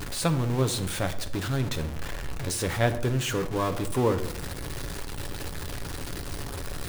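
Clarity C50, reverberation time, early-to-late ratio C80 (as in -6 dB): 13.5 dB, 0.80 s, 15.5 dB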